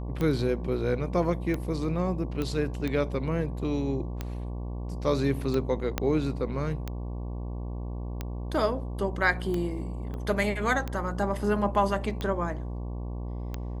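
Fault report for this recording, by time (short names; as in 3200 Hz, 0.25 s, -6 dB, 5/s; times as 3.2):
buzz 60 Hz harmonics 19 -34 dBFS
tick 45 rpm -18 dBFS
2.42 pop -18 dBFS
5.98 pop -11 dBFS
10.14 pop -27 dBFS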